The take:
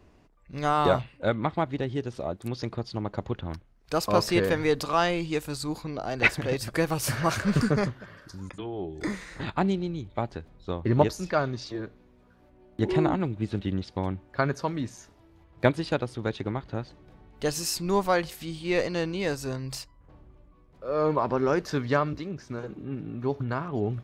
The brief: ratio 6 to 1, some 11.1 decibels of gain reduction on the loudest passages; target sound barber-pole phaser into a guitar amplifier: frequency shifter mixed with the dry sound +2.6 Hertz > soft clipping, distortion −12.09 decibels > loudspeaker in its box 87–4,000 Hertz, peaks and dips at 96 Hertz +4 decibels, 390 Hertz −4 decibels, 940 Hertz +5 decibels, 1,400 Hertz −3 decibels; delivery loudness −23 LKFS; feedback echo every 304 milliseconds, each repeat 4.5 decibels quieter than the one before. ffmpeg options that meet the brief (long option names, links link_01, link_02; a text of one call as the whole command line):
ffmpeg -i in.wav -filter_complex "[0:a]acompressor=threshold=-27dB:ratio=6,aecho=1:1:304|608|912|1216|1520|1824|2128|2432|2736:0.596|0.357|0.214|0.129|0.0772|0.0463|0.0278|0.0167|0.01,asplit=2[link_01][link_02];[link_02]afreqshift=2.6[link_03];[link_01][link_03]amix=inputs=2:normalize=1,asoftclip=threshold=-31dB,highpass=87,equalizer=frequency=96:width_type=q:width=4:gain=4,equalizer=frequency=390:width_type=q:width=4:gain=-4,equalizer=frequency=940:width_type=q:width=4:gain=5,equalizer=frequency=1400:width_type=q:width=4:gain=-3,lowpass=frequency=4000:width=0.5412,lowpass=frequency=4000:width=1.3066,volume=16dB" out.wav